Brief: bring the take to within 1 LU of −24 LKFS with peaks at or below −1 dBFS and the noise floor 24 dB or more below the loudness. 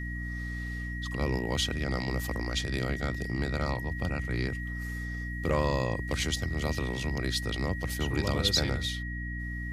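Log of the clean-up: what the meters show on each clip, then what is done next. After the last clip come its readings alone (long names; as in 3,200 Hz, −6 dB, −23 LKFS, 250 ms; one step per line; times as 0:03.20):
mains hum 60 Hz; hum harmonics up to 300 Hz; level of the hum −34 dBFS; interfering tone 1,900 Hz; level of the tone −39 dBFS; integrated loudness −31.5 LKFS; sample peak −13.0 dBFS; target loudness −24.0 LKFS
→ hum removal 60 Hz, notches 5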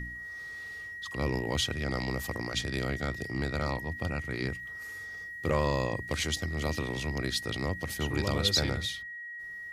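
mains hum none found; interfering tone 1,900 Hz; level of the tone −39 dBFS
→ notch filter 1,900 Hz, Q 30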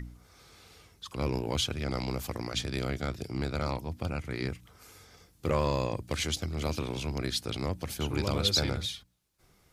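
interfering tone none found; integrated loudness −32.0 LKFS; sample peak −13.5 dBFS; target loudness −24.0 LKFS
→ level +8 dB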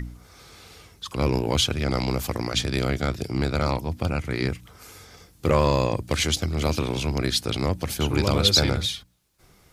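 integrated loudness −24.0 LKFS; sample peak −5.5 dBFS; background noise floor −57 dBFS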